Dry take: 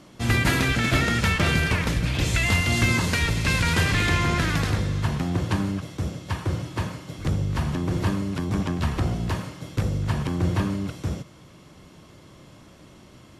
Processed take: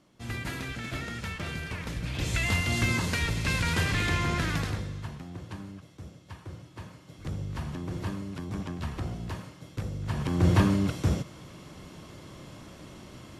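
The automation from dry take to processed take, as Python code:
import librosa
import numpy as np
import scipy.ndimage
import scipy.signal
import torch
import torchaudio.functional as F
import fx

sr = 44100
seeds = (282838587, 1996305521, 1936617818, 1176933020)

y = fx.gain(x, sr, db=fx.line((1.66, -14.0), (2.37, -5.5), (4.56, -5.5), (5.23, -16.0), (6.72, -16.0), (7.4, -9.5), (9.98, -9.5), (10.51, 2.5)))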